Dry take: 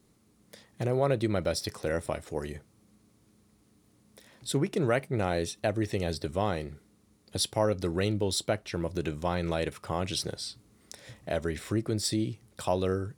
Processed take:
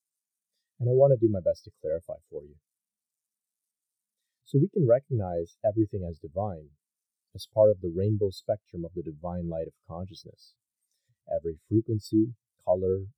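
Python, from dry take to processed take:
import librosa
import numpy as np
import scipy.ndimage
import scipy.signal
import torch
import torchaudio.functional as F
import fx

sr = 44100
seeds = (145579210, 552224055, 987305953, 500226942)

y = x + 0.5 * 10.0 ** (-30.0 / 20.0) * np.diff(np.sign(x), prepend=np.sign(x[:1]))
y = np.repeat(scipy.signal.resample_poly(y, 1, 2), 2)[:len(y)]
y = fx.spectral_expand(y, sr, expansion=2.5)
y = y * 10.0 ** (3.5 / 20.0)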